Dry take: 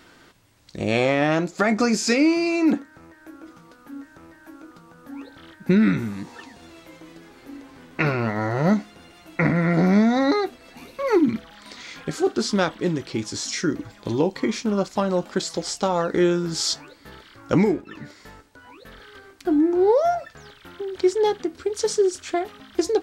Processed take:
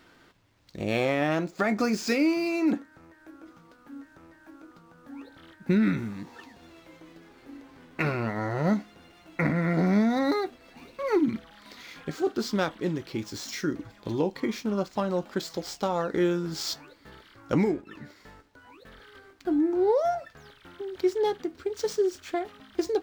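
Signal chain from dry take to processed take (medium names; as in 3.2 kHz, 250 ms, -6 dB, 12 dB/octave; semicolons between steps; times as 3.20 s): median filter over 5 samples; trim -5.5 dB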